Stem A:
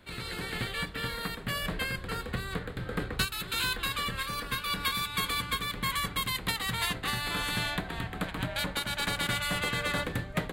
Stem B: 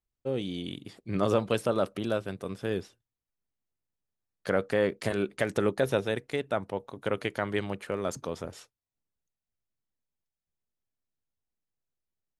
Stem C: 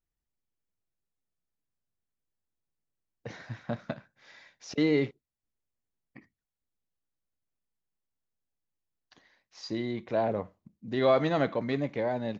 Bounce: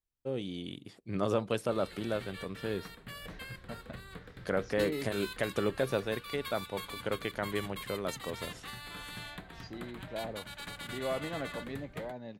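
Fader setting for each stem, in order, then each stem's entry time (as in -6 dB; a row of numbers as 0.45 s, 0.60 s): -12.5 dB, -4.5 dB, -11.5 dB; 1.60 s, 0.00 s, 0.00 s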